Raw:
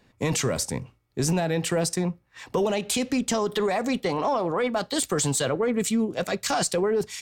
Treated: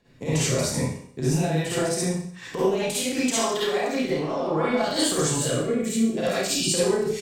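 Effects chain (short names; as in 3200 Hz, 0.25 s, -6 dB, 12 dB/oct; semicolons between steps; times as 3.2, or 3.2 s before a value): 2.85–4.03 low shelf 350 Hz -10 dB; 6.41–6.66 spectral delete 400–2300 Hz; compressor, threshold -26 dBFS, peak gain reduction 6.5 dB; rotary speaker horn 5 Hz, later 0.6 Hz, at 2.41; doubler 32 ms -5.5 dB; reverb RT60 0.60 s, pre-delay 45 ms, DRR -8.5 dB; gain -2 dB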